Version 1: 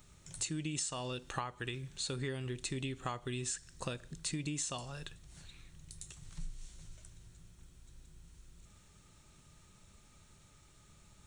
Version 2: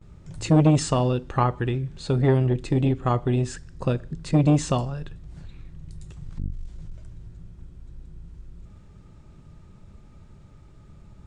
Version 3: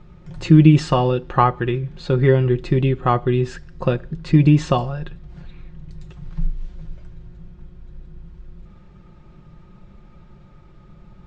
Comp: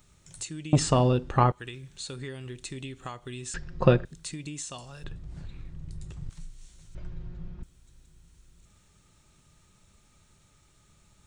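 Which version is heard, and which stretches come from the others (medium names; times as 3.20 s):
1
0.73–1.52 s: from 2
3.54–4.05 s: from 3
5.04–6.30 s: from 2
6.95–7.63 s: from 3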